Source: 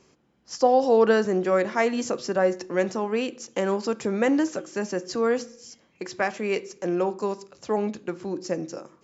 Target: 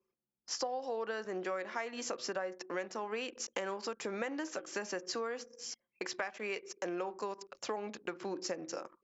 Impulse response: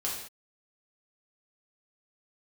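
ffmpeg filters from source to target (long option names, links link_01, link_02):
-af "highpass=frequency=1100:poles=1,highshelf=frequency=6300:gain=-8.5,acompressor=threshold=-41dB:ratio=8,anlmdn=0.000251,volume=6dB"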